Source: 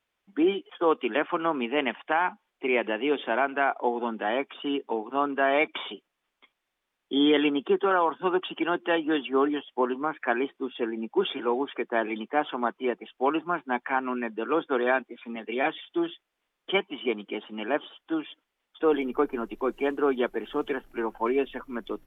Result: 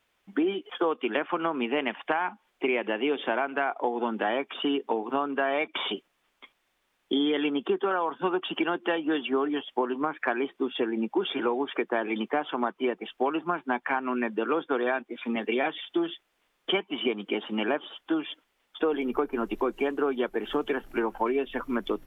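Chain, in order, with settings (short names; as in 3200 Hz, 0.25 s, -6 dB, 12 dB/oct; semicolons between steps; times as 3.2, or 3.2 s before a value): compressor 6:1, threshold -32 dBFS, peak gain reduction 14 dB; gain +8 dB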